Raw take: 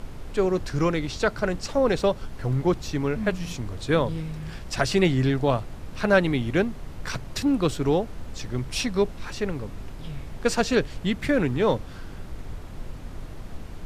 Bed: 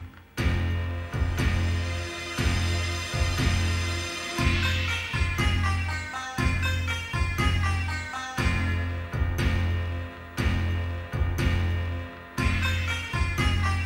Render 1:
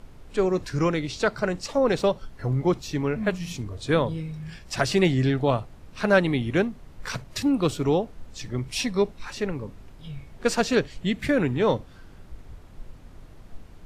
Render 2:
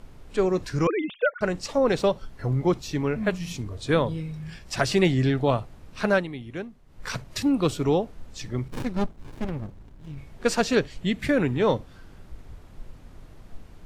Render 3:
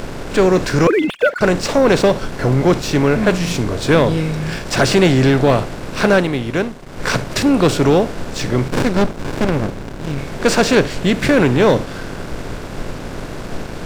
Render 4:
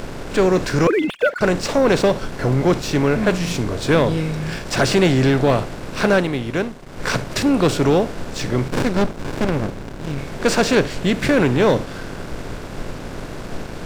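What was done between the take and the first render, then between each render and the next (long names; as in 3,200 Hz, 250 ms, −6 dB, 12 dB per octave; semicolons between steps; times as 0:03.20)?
noise reduction from a noise print 9 dB
0:00.87–0:01.41: three sine waves on the formant tracks; 0:06.06–0:07.08: duck −11.5 dB, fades 0.22 s; 0:08.68–0:10.18: windowed peak hold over 65 samples
compressor on every frequency bin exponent 0.6; leveller curve on the samples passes 2
level −3 dB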